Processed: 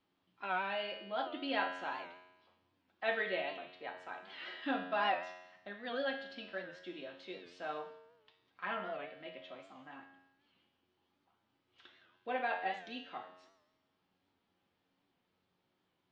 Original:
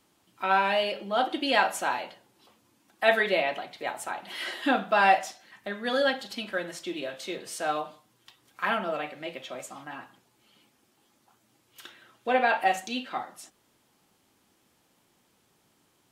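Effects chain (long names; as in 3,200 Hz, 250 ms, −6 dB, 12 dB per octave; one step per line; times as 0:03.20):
low-pass filter 4,200 Hz 24 dB per octave
tuned comb filter 91 Hz, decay 0.99 s, harmonics all, mix 80%
wow of a warped record 78 rpm, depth 100 cents
level −1 dB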